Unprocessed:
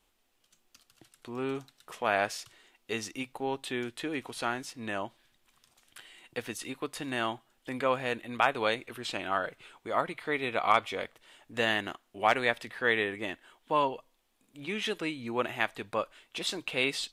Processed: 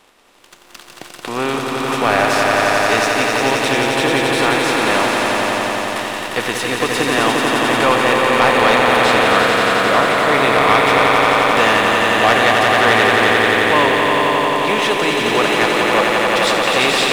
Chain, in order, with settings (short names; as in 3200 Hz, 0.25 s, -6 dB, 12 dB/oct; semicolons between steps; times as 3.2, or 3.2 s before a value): per-bin compression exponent 0.6; swelling echo 88 ms, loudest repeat 5, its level -5 dB; sample leveller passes 2; gain +2 dB